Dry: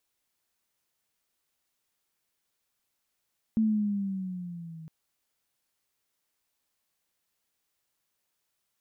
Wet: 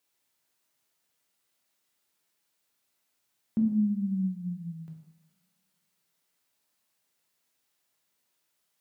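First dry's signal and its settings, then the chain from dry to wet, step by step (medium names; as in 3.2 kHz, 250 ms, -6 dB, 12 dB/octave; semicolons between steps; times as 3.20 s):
gliding synth tone sine, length 1.31 s, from 223 Hz, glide -6 st, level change -21 dB, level -20.5 dB
high-pass 100 Hz; two-slope reverb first 0.88 s, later 2.3 s, from -26 dB, DRR 0.5 dB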